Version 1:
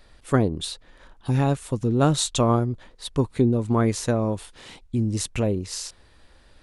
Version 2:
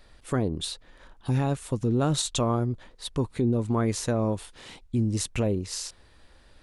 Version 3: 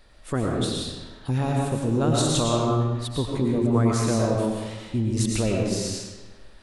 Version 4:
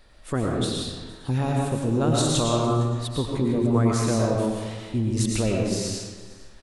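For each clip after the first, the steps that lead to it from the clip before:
brickwall limiter −14.5 dBFS, peak gain reduction 7 dB; level −1.5 dB
comb and all-pass reverb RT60 1.3 s, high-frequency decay 0.8×, pre-delay 70 ms, DRR −2 dB
single-tap delay 458 ms −20.5 dB

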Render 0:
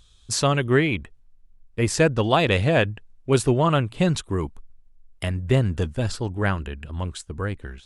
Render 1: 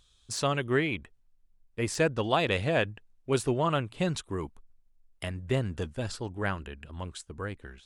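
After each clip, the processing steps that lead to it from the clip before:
low-shelf EQ 190 Hz −6 dB
de-essing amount 45%
level −6 dB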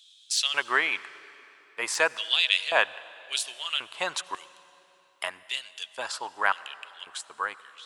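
auto-filter high-pass square 0.92 Hz 970–3,200 Hz
convolution reverb RT60 3.4 s, pre-delay 69 ms, DRR 18 dB
level +5.5 dB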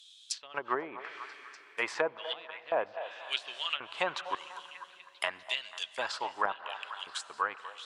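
treble cut that deepens with the level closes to 590 Hz, closed at −22 dBFS
echo through a band-pass that steps 246 ms, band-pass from 730 Hz, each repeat 0.7 octaves, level −9 dB

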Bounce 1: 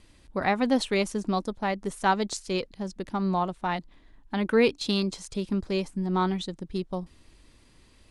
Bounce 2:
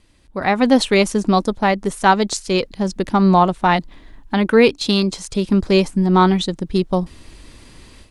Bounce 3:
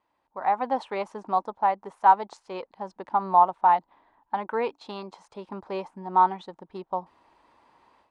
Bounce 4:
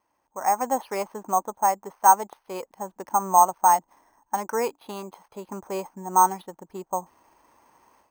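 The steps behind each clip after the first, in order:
automatic gain control gain up to 15 dB
resonant band-pass 890 Hz, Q 4
bad sample-rate conversion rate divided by 6×, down filtered, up hold; level +1.5 dB

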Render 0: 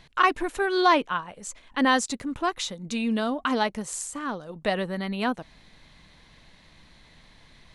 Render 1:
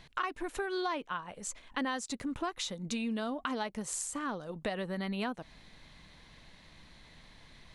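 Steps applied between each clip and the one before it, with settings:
downward compressor 6 to 1, threshold −30 dBFS, peak gain reduction 14.5 dB
level −2 dB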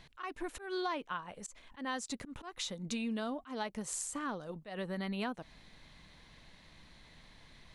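volume swells 141 ms
level −2 dB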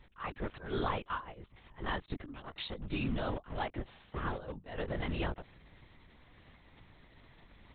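in parallel at −11.5 dB: bit reduction 6 bits
on the sum: linear-prediction vocoder at 8 kHz whisper
one half of a high-frequency compander decoder only

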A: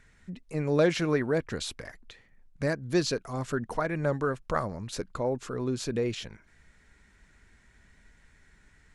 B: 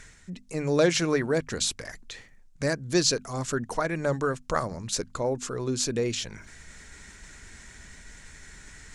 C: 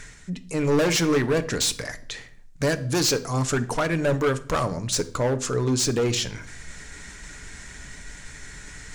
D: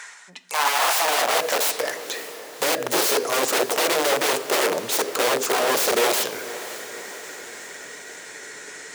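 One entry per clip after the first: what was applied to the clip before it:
parametric band 6,900 Hz +11 dB 1.4 octaves; mains-hum notches 50/100/150/200/250 Hz; reversed playback; upward compression, threshold −37 dBFS; reversed playback; level +1.5 dB
gain into a clipping stage and back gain 25 dB; convolution reverb RT60 0.60 s, pre-delay 7 ms, DRR 10 dB; level +6 dB
wrap-around overflow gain 21.5 dB; feedback delay with all-pass diffusion 553 ms, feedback 53%, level −14.5 dB; high-pass filter sweep 900 Hz → 430 Hz, 0:00.60–0:02.03; level +4 dB

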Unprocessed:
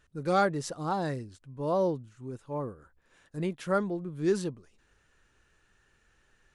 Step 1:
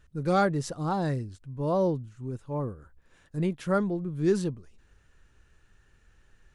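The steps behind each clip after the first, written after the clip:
low-shelf EQ 170 Hz +11 dB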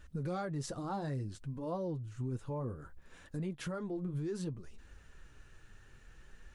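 downward compressor 10 to 1, threshold −35 dBFS, peak gain reduction 16 dB
brickwall limiter −34.5 dBFS, peak gain reduction 7 dB
flanger 0.61 Hz, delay 3.3 ms, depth 6.4 ms, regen −44%
level +8 dB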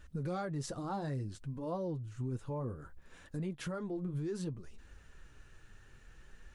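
no processing that can be heard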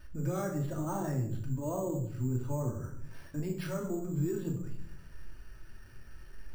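convolution reverb RT60 0.65 s, pre-delay 3 ms, DRR 0 dB
bad sample-rate conversion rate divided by 6×, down filtered, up hold

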